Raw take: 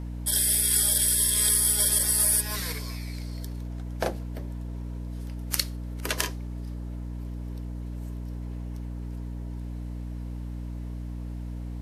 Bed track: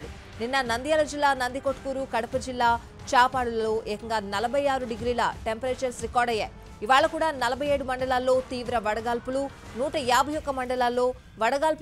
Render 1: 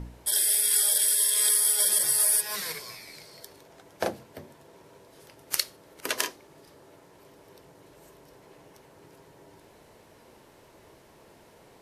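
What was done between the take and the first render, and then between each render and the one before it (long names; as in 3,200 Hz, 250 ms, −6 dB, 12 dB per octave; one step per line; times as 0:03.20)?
hum removal 60 Hz, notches 5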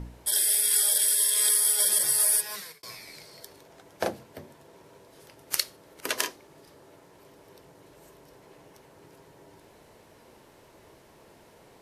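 0:02.36–0:02.83: fade out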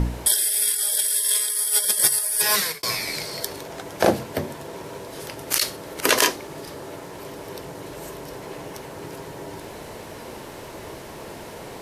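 compressor whose output falls as the input rises −29 dBFS, ratio −0.5
boost into a limiter +11 dB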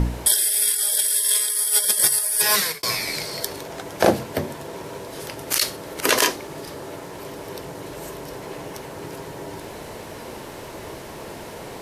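level +1.5 dB
brickwall limiter −2 dBFS, peak gain reduction 2.5 dB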